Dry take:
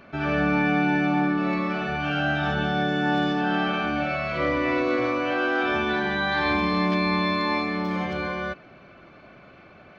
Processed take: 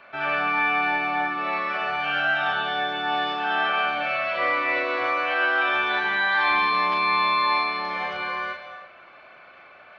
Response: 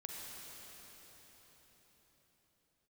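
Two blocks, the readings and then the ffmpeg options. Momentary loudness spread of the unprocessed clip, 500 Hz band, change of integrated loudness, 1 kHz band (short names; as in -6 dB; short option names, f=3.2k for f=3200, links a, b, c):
5 LU, -4.0 dB, +1.5 dB, +4.0 dB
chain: -filter_complex "[0:a]acrossover=split=590 4200:gain=0.0891 1 0.158[a][b][c];[a][b][c]amix=inputs=3:normalize=0,asplit=2[d][e];[e]lowpass=f=5.6k:t=q:w=1.5[f];[1:a]atrim=start_sample=2205,afade=t=out:st=0.37:d=0.01,atrim=end_sample=16758,adelay=35[g];[f][g]afir=irnorm=-1:irlink=0,volume=-2.5dB[h];[d][h]amix=inputs=2:normalize=0,volume=3.5dB"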